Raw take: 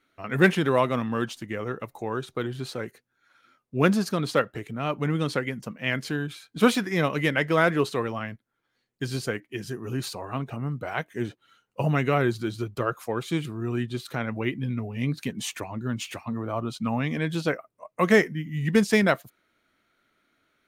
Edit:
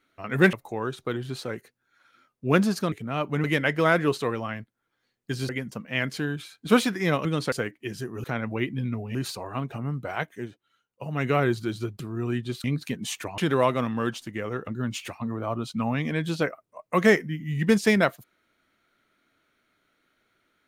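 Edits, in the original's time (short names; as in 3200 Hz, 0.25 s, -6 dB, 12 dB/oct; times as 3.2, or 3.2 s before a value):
0.53–1.83 move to 15.74
4.22–4.61 cut
5.13–5.4 swap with 7.16–9.21
11.1–12.05 dip -10 dB, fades 0.16 s
12.78–13.45 cut
14.09–15 move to 9.93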